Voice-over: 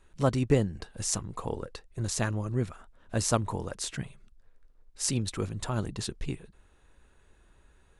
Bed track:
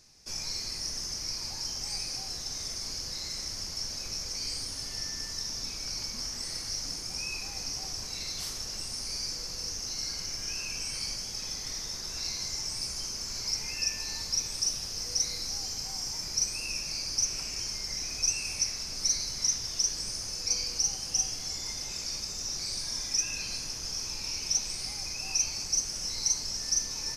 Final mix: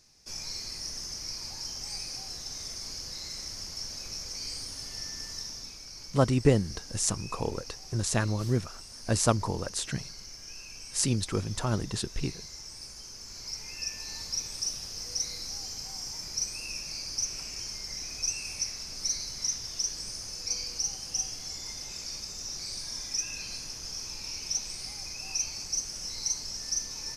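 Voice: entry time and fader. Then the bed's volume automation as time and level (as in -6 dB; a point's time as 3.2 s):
5.95 s, +2.0 dB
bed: 5.38 s -2.5 dB
5.89 s -9.5 dB
12.99 s -9.5 dB
14.21 s -3 dB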